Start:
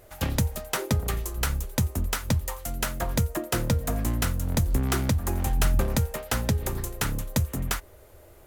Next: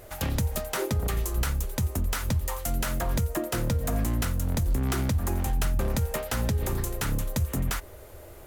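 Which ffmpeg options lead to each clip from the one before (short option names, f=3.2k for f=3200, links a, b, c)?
-af "alimiter=limit=-24dB:level=0:latency=1:release=89,volume=5.5dB"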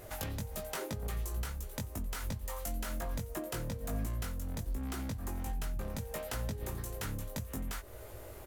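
-filter_complex "[0:a]acompressor=threshold=-36dB:ratio=3,asplit=2[a][b];[b]adelay=19,volume=-4dB[c];[a][c]amix=inputs=2:normalize=0,volume=-3dB"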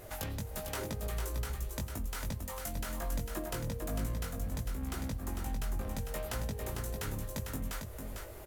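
-filter_complex "[0:a]acrusher=bits=11:mix=0:aa=0.000001,asplit=2[a][b];[b]aecho=0:1:450:0.531[c];[a][c]amix=inputs=2:normalize=0"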